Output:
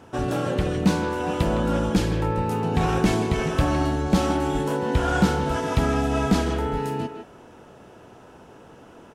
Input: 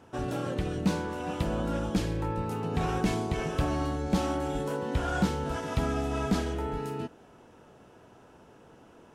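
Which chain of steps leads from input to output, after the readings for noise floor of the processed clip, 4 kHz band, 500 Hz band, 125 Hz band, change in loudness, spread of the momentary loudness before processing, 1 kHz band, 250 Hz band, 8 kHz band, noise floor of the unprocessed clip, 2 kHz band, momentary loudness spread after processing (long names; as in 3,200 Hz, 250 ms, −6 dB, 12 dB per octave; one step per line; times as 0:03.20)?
−48 dBFS, +7.5 dB, +7.5 dB, +7.0 dB, +7.5 dB, 5 LU, +7.5 dB, +7.5 dB, +7.0 dB, −56 dBFS, +8.0 dB, 5 LU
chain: far-end echo of a speakerphone 160 ms, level −7 dB
level +7 dB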